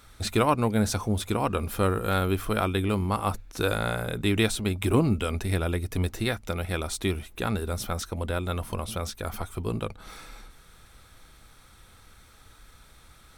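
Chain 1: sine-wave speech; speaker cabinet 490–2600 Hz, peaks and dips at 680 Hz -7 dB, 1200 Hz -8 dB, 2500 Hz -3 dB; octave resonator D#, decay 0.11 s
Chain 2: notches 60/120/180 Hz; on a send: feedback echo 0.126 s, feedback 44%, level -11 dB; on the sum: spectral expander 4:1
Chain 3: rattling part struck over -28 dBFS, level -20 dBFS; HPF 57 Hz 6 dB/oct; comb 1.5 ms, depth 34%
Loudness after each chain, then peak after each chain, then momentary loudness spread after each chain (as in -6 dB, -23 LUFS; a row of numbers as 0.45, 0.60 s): -44.5, -31.0, -27.5 LUFS; -26.0, -8.5, -8.5 dBFS; 14, 24, 9 LU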